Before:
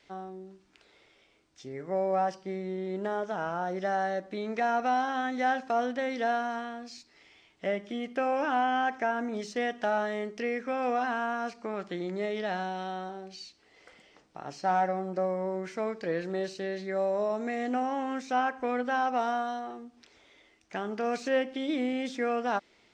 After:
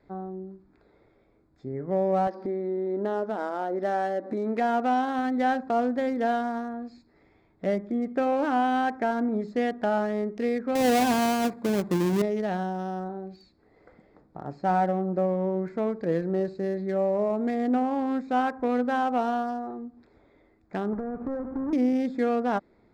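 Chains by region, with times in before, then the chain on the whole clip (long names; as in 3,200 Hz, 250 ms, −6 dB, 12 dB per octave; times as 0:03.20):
0:02.27–0:05.19: linear-phase brick-wall band-pass 200–6,500 Hz + upward compression, threshold −30 dBFS
0:10.75–0:12.22: each half-wave held at its own peak + high-pass filter 100 Hz + notch filter 1,300 Hz, Q 8.3
0:20.93–0:21.73: each half-wave held at its own peak + low-pass filter 1,600 Hz 24 dB per octave + downward compressor, threshold −35 dBFS
whole clip: adaptive Wiener filter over 15 samples; low-shelf EQ 400 Hz +11 dB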